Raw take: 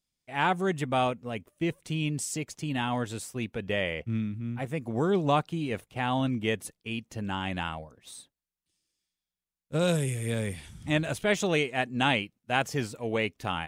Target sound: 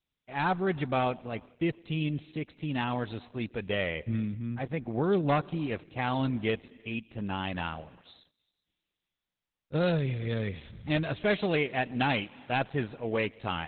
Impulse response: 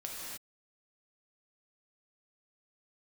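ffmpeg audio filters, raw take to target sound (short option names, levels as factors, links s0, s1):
-filter_complex "[0:a]aeval=exprs='0.133*(abs(mod(val(0)/0.133+3,4)-2)-1)':c=same,asplit=2[s0][s1];[1:a]atrim=start_sample=2205,adelay=120[s2];[s1][s2]afir=irnorm=-1:irlink=0,volume=0.075[s3];[s0][s3]amix=inputs=2:normalize=0" -ar 48000 -c:a libopus -b:a 8k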